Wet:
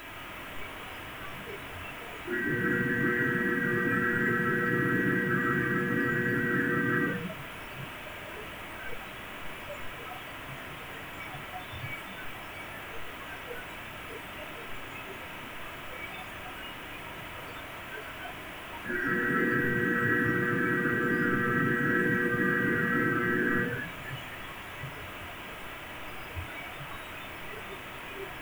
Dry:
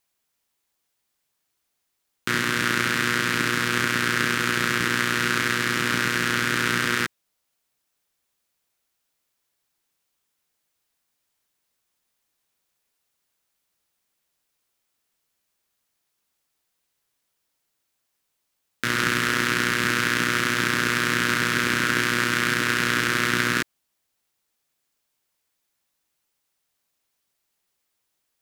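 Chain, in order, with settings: one-bit delta coder 16 kbps, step -17 dBFS; added noise blue -36 dBFS; simulated room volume 2400 m³, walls mixed, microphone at 2.9 m; spectral noise reduction 14 dB; trim -8.5 dB

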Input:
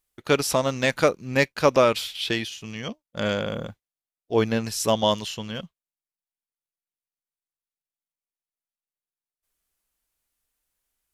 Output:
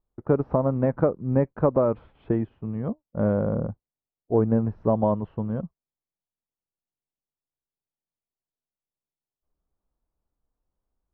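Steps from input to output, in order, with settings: low-pass 1.1 kHz 24 dB/octave; compression 2.5:1, threshold -22 dBFS, peak gain reduction 6.5 dB; bass shelf 360 Hz +8.5 dB

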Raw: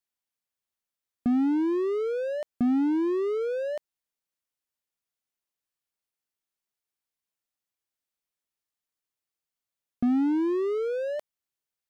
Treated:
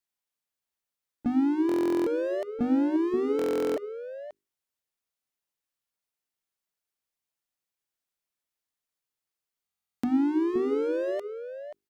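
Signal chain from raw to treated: hum notches 50/100/150/200/250/300/350/400 Hz; harmony voices +3 st -14 dB; echo from a far wall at 91 m, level -9 dB; buffer glitch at 1.67/3.37/9.64 s, samples 1024, times 16

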